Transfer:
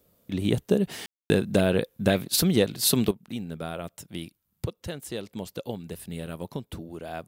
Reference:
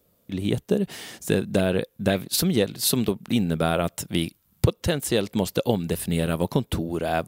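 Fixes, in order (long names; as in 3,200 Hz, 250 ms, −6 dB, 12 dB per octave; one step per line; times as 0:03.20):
ambience match 0:01.06–0:01.30
level correction +11.5 dB, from 0:03.11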